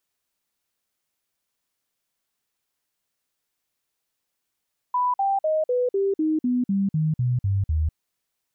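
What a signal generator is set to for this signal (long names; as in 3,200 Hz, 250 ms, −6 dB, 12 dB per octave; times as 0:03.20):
stepped sweep 991 Hz down, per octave 3, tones 12, 0.20 s, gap 0.05 s −19 dBFS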